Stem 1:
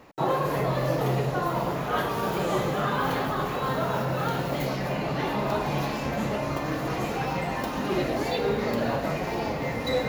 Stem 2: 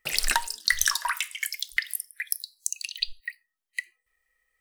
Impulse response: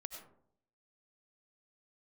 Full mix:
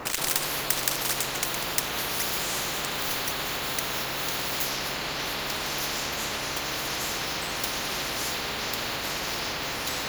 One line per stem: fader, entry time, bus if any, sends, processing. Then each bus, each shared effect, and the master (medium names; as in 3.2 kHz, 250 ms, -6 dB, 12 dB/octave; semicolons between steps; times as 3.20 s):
+2.5 dB, 0.00 s, no send, none
-0.5 dB, 0.00 s, no send, dead-time distortion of 0.13 ms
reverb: none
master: high-order bell 620 Hz +9 dB 2.4 oct; spectrum-flattening compressor 10:1